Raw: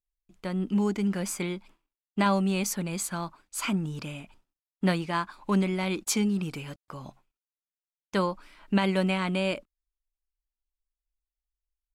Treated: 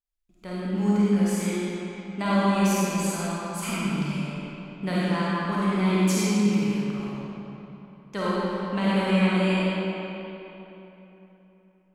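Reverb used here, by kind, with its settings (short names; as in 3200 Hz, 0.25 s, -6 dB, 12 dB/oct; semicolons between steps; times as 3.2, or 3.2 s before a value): digital reverb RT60 3.4 s, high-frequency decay 0.7×, pre-delay 10 ms, DRR -9 dB; gain -6 dB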